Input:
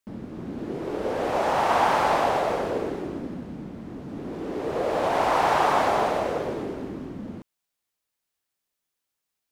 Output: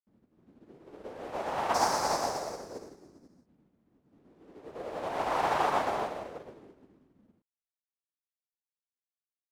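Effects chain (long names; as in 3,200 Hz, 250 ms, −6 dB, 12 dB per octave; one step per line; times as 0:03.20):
0:01.74–0:03.46: high shelf with overshoot 4,100 Hz +9.5 dB, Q 3
expander for the loud parts 2.5 to 1, over −40 dBFS
level −4 dB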